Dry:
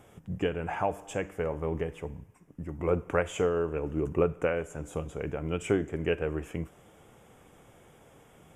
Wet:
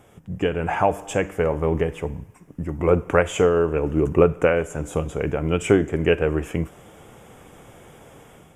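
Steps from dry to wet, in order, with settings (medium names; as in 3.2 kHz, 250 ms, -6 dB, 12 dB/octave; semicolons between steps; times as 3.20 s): level rider gain up to 7 dB; trim +3 dB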